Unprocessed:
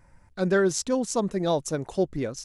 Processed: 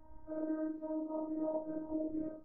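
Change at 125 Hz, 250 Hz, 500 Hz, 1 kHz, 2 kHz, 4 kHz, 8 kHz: -28.5 dB, -9.5 dB, -15.0 dB, -17.0 dB, under -25 dB, under -40 dB, under -40 dB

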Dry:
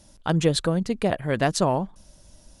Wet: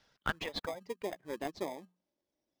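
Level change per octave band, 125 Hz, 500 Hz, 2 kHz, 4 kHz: -26.0, -15.0, -8.5, -12.5 dB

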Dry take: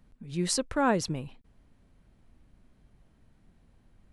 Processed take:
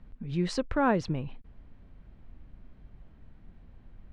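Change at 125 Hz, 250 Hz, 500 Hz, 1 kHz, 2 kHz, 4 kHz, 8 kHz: +2.5, +1.0, 0.0, 0.0, -0.5, -6.5, -14.5 dB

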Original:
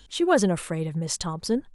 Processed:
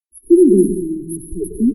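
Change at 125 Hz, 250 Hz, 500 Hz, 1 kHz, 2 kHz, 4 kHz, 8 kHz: +1.5 dB, +12.5 dB, +10.0 dB, under -40 dB, under -40 dB, under -40 dB, -0.5 dB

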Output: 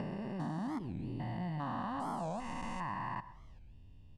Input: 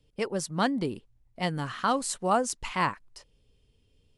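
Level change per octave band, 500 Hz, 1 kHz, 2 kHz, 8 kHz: -14.0, -9.5, -13.0, -24.5 dB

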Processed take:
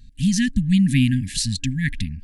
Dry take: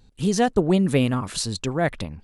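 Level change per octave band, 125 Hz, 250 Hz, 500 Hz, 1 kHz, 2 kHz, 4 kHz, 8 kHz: +4.5 dB, +3.5 dB, under -35 dB, under -40 dB, +2.5 dB, +3.0 dB, +3.0 dB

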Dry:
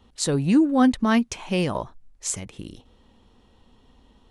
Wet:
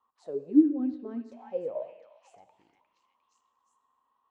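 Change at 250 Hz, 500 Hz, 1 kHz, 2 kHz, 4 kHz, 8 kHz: -6.5 dB, -6.5 dB, -22.0 dB, under -30 dB, under -30 dB, under -40 dB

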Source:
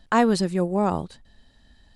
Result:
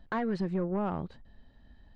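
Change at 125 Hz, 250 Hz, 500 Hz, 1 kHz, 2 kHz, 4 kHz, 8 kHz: -6.5 dB, -9.0 dB, -10.0 dB, -12.0 dB, -10.5 dB, under -15 dB, under -25 dB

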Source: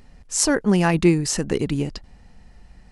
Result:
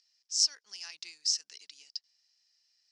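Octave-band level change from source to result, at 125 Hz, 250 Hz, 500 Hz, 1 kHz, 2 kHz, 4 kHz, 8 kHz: under -40 dB, under -40 dB, under -40 dB, under -35 dB, -23.5 dB, 0.0 dB, -7.5 dB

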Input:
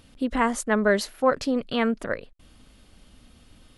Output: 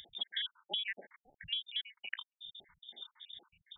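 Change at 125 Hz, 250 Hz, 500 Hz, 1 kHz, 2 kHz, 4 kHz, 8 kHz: -28.0 dB, under -40 dB, -35.0 dB, -29.5 dB, -14.5 dB, +2.0 dB, under -40 dB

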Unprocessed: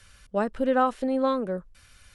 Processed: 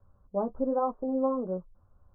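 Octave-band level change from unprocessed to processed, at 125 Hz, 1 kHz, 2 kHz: n/a, -6.5 dB, under -25 dB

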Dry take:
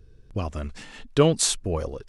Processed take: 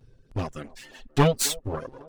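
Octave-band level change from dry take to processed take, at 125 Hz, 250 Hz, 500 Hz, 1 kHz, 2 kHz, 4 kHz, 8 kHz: 0.0, -2.0, -3.5, +2.5, +2.5, -2.5, -3.0 dB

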